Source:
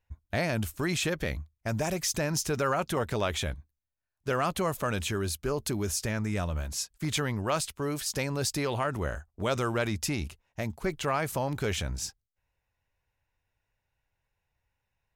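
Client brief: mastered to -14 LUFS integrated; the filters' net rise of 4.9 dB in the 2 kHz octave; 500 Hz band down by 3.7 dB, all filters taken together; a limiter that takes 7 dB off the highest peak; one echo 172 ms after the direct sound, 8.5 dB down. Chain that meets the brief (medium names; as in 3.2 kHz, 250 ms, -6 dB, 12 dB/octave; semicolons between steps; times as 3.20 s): peaking EQ 500 Hz -5 dB; peaking EQ 2 kHz +6.5 dB; peak limiter -20 dBFS; delay 172 ms -8.5 dB; trim +17 dB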